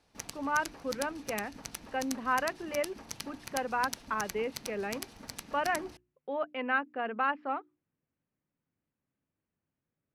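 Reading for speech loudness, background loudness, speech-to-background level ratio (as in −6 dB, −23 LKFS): −34.0 LKFS, −43.0 LKFS, 9.0 dB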